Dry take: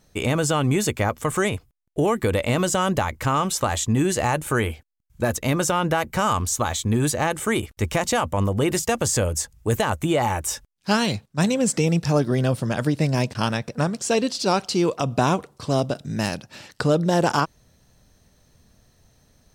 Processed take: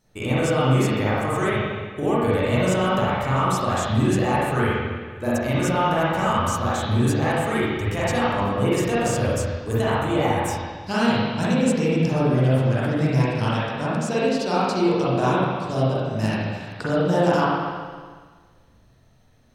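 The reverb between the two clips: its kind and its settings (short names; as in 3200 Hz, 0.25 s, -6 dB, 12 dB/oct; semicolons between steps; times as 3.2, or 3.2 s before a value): spring tank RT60 1.6 s, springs 38/46/55 ms, chirp 30 ms, DRR -9 dB; gain -8.5 dB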